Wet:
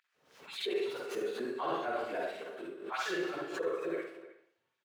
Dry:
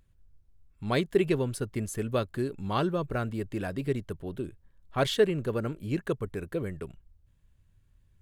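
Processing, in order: median filter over 5 samples; LFO high-pass sine 2.4 Hz 420–6200 Hz; plain phase-vocoder stretch 0.59×; HPF 100 Hz; speakerphone echo 0.31 s, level -16 dB; reverb RT60 0.60 s, pre-delay 42 ms, DRR -3 dB; reverse; compressor, threshold -31 dBFS, peak gain reduction 9.5 dB; reverse; high shelf 6000 Hz -8 dB; backwards sustainer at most 85 dB/s

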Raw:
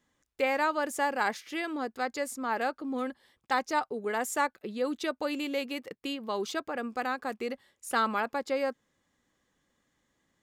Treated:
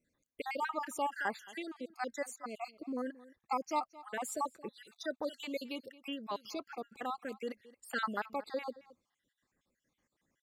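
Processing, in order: random spectral dropouts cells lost 57%; outdoor echo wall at 38 m, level -19 dB; gain -4.5 dB

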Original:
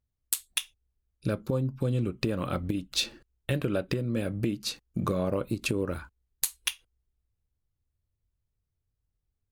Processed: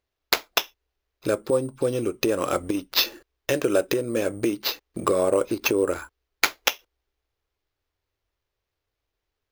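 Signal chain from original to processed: sample-and-hold 5×; resonant low shelf 260 Hz -12 dB, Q 1.5; gain +7.5 dB

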